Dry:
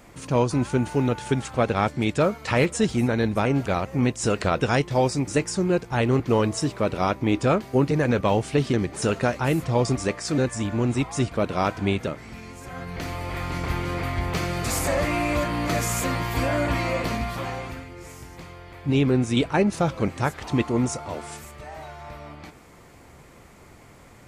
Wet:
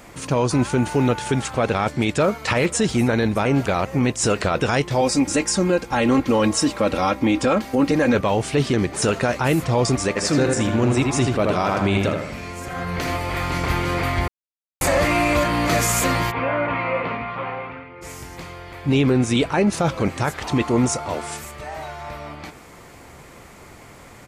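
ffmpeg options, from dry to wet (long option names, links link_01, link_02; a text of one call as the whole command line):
ffmpeg -i in.wav -filter_complex "[0:a]asettb=1/sr,asplit=3[link_01][link_02][link_03];[link_01]atrim=end=5.014[link_04];[link_02]atrim=start=5.01:end=8.15,asetpts=PTS-STARTPTS,afade=type=in:duration=0.004:curve=qsin,afade=type=out:start_time=3.136:duration=0.004:curve=qsin,aecho=1:1:3.7:0.65,atrim=end_sample=138474[link_05];[link_03]atrim=start=8.146[link_06];[link_04][link_05]acrossfade=duration=0.004:curve1=hsin:curve2=qsin[link_07];[link_07][link_06]acrossfade=duration=0.004:curve1=qsin:curve2=hsin,asplit=3[link_08][link_09][link_10];[link_08]afade=type=out:start_time=10.15:duration=0.02[link_11];[link_09]asplit=2[link_12][link_13];[link_13]adelay=80,lowpass=frequency=2900:poles=1,volume=-4.5dB,asplit=2[link_14][link_15];[link_15]adelay=80,lowpass=frequency=2900:poles=1,volume=0.49,asplit=2[link_16][link_17];[link_17]adelay=80,lowpass=frequency=2900:poles=1,volume=0.49,asplit=2[link_18][link_19];[link_19]adelay=80,lowpass=frequency=2900:poles=1,volume=0.49,asplit=2[link_20][link_21];[link_21]adelay=80,lowpass=frequency=2900:poles=1,volume=0.49,asplit=2[link_22][link_23];[link_23]adelay=80,lowpass=frequency=2900:poles=1,volume=0.49[link_24];[link_12][link_14][link_16][link_18][link_20][link_22][link_24]amix=inputs=7:normalize=0,afade=type=in:start_time=10.15:duration=0.02,afade=type=out:start_time=13.16:duration=0.02[link_25];[link_10]afade=type=in:start_time=13.16:duration=0.02[link_26];[link_11][link_25][link_26]amix=inputs=3:normalize=0,asplit=3[link_27][link_28][link_29];[link_27]afade=type=out:start_time=16.3:duration=0.02[link_30];[link_28]highpass=170,equalizer=frequency=210:width_type=q:width=4:gain=-8,equalizer=frequency=330:width_type=q:width=4:gain=-10,equalizer=frequency=680:width_type=q:width=4:gain=-6,equalizer=frequency=1700:width_type=q:width=4:gain=-7,lowpass=frequency=2400:width=0.5412,lowpass=frequency=2400:width=1.3066,afade=type=in:start_time=16.3:duration=0.02,afade=type=out:start_time=18.01:duration=0.02[link_31];[link_29]afade=type=in:start_time=18.01:duration=0.02[link_32];[link_30][link_31][link_32]amix=inputs=3:normalize=0,asplit=3[link_33][link_34][link_35];[link_33]atrim=end=14.28,asetpts=PTS-STARTPTS,afade=type=out:start_time=14.276:duration=0.004:curve=hsin[link_36];[link_34]atrim=start=14.28:end=14.81,asetpts=PTS-STARTPTS,volume=0[link_37];[link_35]atrim=start=14.81,asetpts=PTS-STARTPTS,afade=type=in:duration=0.004:curve=hsin[link_38];[link_36][link_37][link_38]concat=n=3:v=0:a=1,lowshelf=frequency=370:gain=-4,alimiter=limit=-17.5dB:level=0:latency=1:release=13,volume=7.5dB" out.wav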